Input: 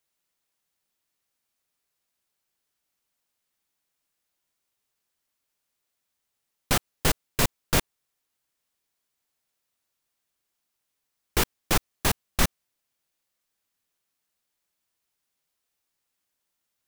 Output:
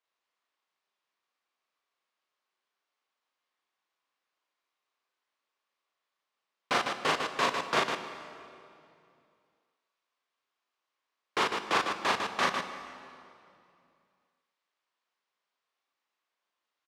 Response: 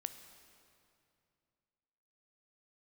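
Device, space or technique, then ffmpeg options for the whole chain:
station announcement: -filter_complex "[0:a]highpass=380,lowpass=3600,equalizer=frequency=1100:width_type=o:width=0.28:gain=7.5,aecho=1:1:37.9|151.6:0.891|0.562[link_01];[1:a]atrim=start_sample=2205[link_02];[link_01][link_02]afir=irnorm=-1:irlink=0"

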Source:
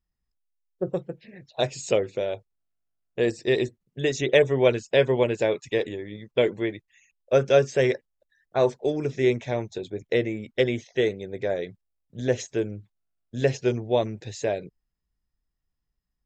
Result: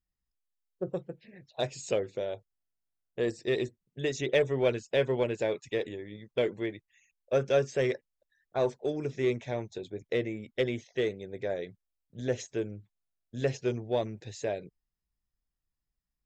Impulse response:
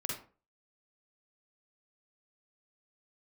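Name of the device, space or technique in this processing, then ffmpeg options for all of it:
parallel distortion: -filter_complex "[0:a]asettb=1/sr,asplit=3[link_01][link_02][link_03];[link_01]atrim=end=1.964[link_04];[link_02]atrim=start=1.96:end=3.4,asetpts=PTS-STARTPTS,afade=type=in:duration=0.004:curve=qsin,afade=type=out:start_time=1.436:duration=0.004:curve=qsin,equalizer=frequency=2500:width_type=o:width=0.25:gain=-5.5[link_05];[link_03]atrim=start=3.396[link_06];[link_04][link_05]acrossfade=duration=0.004:curve1=hsin:curve2=qsin[link_07];[link_07][link_06]acrossfade=duration=0.004:curve1=qsin:curve2=hsin,asplit=2[link_08][link_09];[link_09]asoftclip=type=hard:threshold=-18.5dB,volume=-10dB[link_10];[link_08][link_10]amix=inputs=2:normalize=0,volume=-8.5dB"

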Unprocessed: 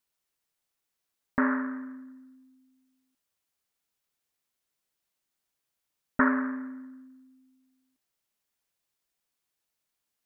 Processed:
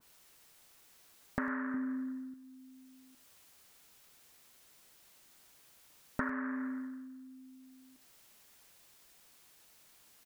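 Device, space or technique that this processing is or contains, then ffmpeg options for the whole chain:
upward and downward compression: -filter_complex "[0:a]asettb=1/sr,asplit=3[link_01][link_02][link_03];[link_01]atrim=end=1.744[link_04];[link_02]atrim=start=1.74:end=2.34,asetpts=PTS-STARTPTS,afade=type=in:duration=0.004:curve=qsin,afade=type=out:start_time=0.596:duration=0.004:curve=qsin,lowshelf=frequency=410:gain=8[link_05];[link_03]atrim=start=2.336[link_06];[link_04][link_05]acrossfade=duration=0.004:curve1=hsin:curve2=qsin[link_07];[link_07][link_06]acrossfade=duration=0.004:curve1=qsin:curve2=hsin,acompressor=mode=upward:threshold=-49dB:ratio=2.5,acompressor=threshold=-36dB:ratio=8,aecho=1:1:101:0.112,adynamicequalizer=threshold=0.00112:dfrequency=1600:dqfactor=0.7:tfrequency=1600:tqfactor=0.7:attack=5:release=100:ratio=0.375:range=3:mode=boostabove:tftype=highshelf,volume=2.5dB"

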